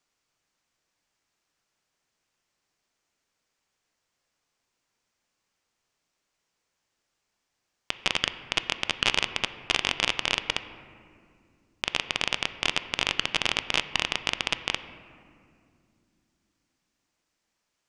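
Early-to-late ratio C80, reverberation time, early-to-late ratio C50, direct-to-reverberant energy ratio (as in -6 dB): 13.5 dB, 2.4 s, 12.5 dB, 11.0 dB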